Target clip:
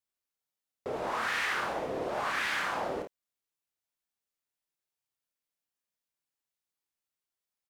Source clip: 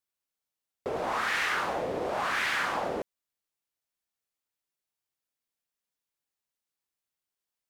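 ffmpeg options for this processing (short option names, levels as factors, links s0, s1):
-af "aecho=1:1:31|54:0.501|0.398,volume=0.631"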